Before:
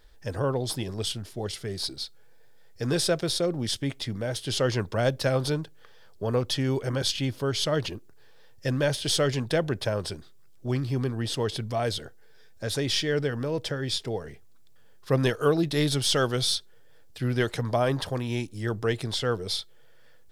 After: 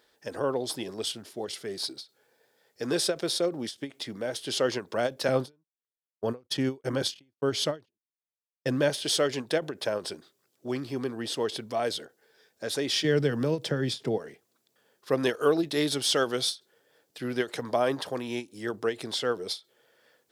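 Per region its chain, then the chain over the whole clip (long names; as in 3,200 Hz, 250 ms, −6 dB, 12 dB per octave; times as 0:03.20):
0:05.28–0:08.90: low-shelf EQ 180 Hz +11.5 dB + noise gate −28 dBFS, range −51 dB
0:13.04–0:14.18: parametric band 140 Hz +14 dB 1.5 octaves + multiband upward and downward compressor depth 40%
whole clip: Chebyshev high-pass filter 290 Hz, order 2; every ending faded ahead of time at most 290 dB per second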